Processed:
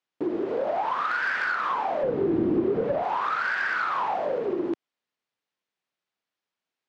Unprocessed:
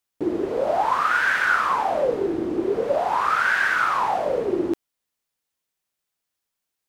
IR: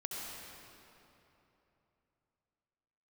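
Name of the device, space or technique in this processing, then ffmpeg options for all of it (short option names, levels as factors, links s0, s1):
AM radio: -filter_complex "[0:a]highpass=150,lowpass=3800,acompressor=threshold=0.0794:ratio=6,asoftclip=type=tanh:threshold=0.126,asettb=1/sr,asplit=3[s0][s1][s2];[s0]atrim=end=2.034[s3];[s1]atrim=start=2.03:end=3.03,asetpts=PTS-STARTPTS,afade=t=in:d=0.004:c=qsin,afade=t=out:st=0.996:d=0.004:c=qsin,bass=f=250:g=15,treble=f=4000:g=-5[s4];[s2]atrim=start=3.026[s5];[s3][s4]acrossfade=d=0.004:c1=hsin:c2=qsin[s6];[s6][s5]acrossfade=d=0.004:c1=qsin:c2=hsin"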